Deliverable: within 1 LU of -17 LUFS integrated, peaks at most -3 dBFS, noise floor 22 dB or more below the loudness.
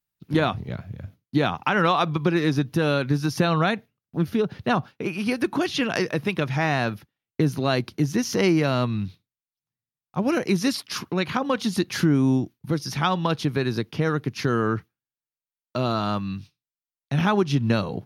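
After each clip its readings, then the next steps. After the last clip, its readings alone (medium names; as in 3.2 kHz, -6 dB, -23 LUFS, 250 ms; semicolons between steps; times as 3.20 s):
loudness -24.5 LUFS; peak level -8.0 dBFS; loudness target -17.0 LUFS
-> trim +7.5 dB; peak limiter -3 dBFS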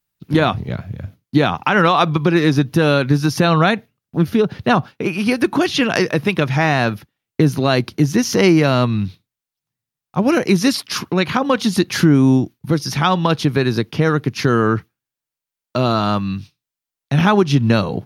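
loudness -17.0 LUFS; peak level -3.0 dBFS; noise floor -87 dBFS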